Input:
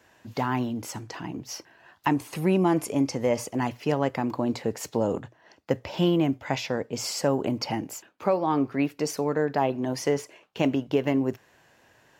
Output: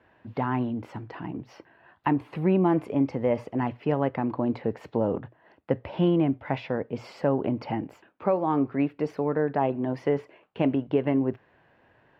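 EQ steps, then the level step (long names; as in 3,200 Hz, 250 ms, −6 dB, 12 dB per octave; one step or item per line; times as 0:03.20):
high-frequency loss of the air 470 metres
+1.0 dB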